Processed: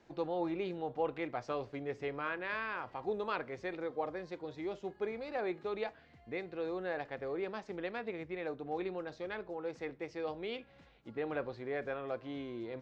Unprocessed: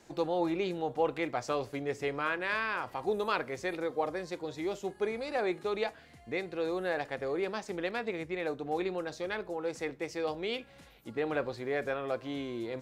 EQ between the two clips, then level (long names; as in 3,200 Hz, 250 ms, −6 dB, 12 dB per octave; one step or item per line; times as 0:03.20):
high-frequency loss of the air 170 metres
−4.5 dB